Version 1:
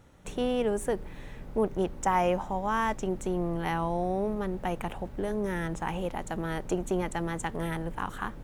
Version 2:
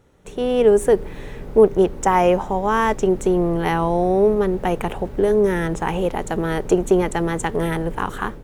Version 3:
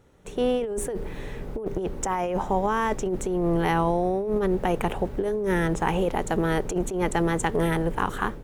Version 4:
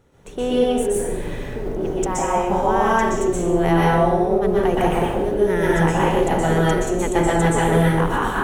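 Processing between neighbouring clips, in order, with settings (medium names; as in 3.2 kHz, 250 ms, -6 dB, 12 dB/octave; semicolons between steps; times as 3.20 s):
level rider gain up to 10 dB; peaking EQ 420 Hz +8.5 dB 0.43 oct; trim -1 dB
compressor with a negative ratio -20 dBFS, ratio -1; trim -4 dB
plate-style reverb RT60 0.94 s, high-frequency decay 0.8×, pre-delay 110 ms, DRR -5.5 dB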